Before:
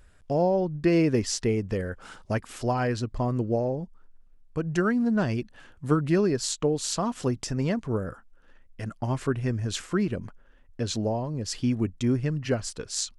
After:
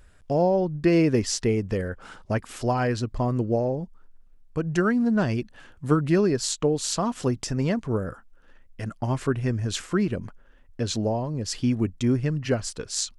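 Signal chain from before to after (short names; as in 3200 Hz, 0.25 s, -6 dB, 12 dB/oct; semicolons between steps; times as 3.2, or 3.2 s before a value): 1.88–2.39 high shelf 4200 Hz -6 dB; gain +2 dB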